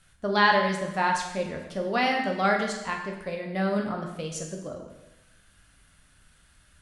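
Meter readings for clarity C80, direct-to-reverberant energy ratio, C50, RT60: 7.5 dB, 1.0 dB, 5.5 dB, 1.0 s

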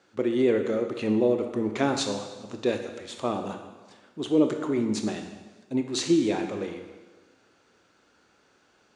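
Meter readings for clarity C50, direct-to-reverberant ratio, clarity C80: 7.0 dB, 5.0 dB, 8.5 dB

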